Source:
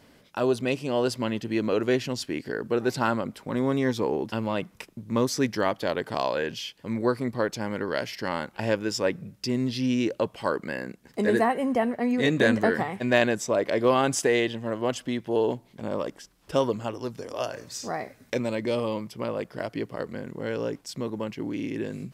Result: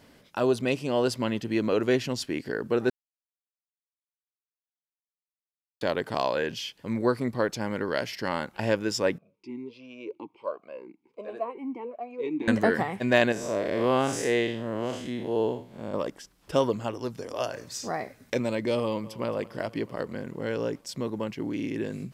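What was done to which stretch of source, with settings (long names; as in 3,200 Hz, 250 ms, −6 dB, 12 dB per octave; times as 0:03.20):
0:02.90–0:05.81: silence
0:09.18–0:12.48: formant filter swept between two vowels a-u 1.4 Hz
0:13.32–0:15.94: spectrum smeared in time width 151 ms
0:18.81–0:19.25: delay throw 220 ms, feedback 75%, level −17.5 dB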